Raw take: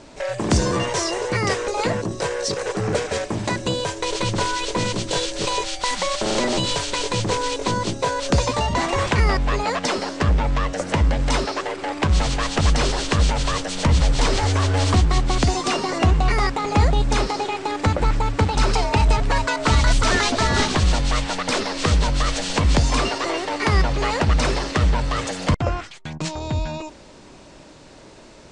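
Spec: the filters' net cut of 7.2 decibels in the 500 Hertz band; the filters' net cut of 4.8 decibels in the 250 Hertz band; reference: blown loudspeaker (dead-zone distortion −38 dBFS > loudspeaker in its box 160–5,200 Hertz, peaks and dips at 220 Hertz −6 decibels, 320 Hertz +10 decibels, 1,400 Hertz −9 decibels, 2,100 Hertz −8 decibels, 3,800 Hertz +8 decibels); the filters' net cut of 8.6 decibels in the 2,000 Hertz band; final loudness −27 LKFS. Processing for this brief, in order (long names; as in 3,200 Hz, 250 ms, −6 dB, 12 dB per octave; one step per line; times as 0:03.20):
parametric band 250 Hz −7 dB
parametric band 500 Hz −8.5 dB
parametric band 2,000 Hz −4 dB
dead-zone distortion −38 dBFS
loudspeaker in its box 160–5,200 Hz, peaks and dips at 220 Hz −6 dB, 320 Hz +10 dB, 1,400 Hz −9 dB, 2,100 Hz −8 dB, 3,800 Hz +8 dB
level +0.5 dB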